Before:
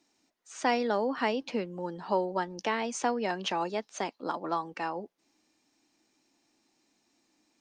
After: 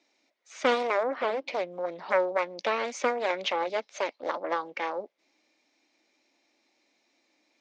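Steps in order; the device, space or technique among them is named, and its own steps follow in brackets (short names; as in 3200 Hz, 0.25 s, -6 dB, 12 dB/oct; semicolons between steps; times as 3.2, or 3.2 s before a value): full-range speaker at full volume (Doppler distortion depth 0.79 ms; speaker cabinet 290–6400 Hz, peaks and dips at 570 Hz +9 dB, 2200 Hz +10 dB, 3700 Hz +4 dB); 1.03–1.48 high shelf 2000 Hz -10.5 dB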